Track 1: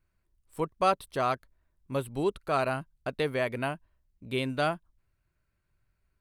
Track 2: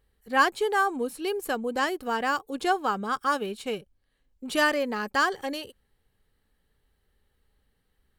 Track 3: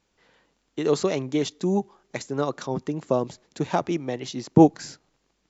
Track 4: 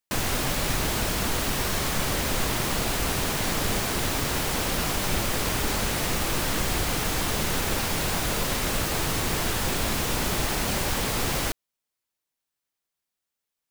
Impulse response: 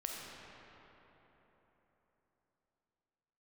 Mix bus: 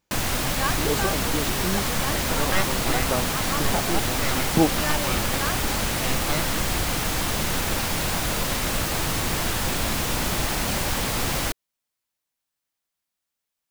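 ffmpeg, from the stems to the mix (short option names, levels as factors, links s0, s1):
-filter_complex "[0:a]aeval=exprs='abs(val(0))':c=same,adelay=1700,volume=1.26[s0];[1:a]adelay=250,volume=0.447[s1];[2:a]volume=0.596[s2];[3:a]volume=1.19[s3];[s0][s1][s2][s3]amix=inputs=4:normalize=0,equalizer=f=410:t=o:w=0.35:g=-4"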